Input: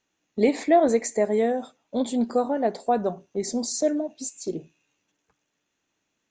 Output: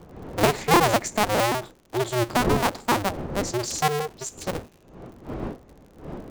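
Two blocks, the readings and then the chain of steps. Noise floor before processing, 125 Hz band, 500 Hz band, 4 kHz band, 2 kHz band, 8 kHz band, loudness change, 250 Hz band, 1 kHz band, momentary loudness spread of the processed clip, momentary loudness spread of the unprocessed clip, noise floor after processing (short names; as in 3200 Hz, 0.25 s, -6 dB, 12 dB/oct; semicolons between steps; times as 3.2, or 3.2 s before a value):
-78 dBFS, +13.5 dB, -2.0 dB, +10.0 dB, +10.5 dB, +3.0 dB, +0.5 dB, -2.5 dB, +5.0 dB, 17 LU, 13 LU, -54 dBFS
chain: cycle switcher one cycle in 2, inverted; wind noise 420 Hz -35 dBFS; crackle 64/s -41 dBFS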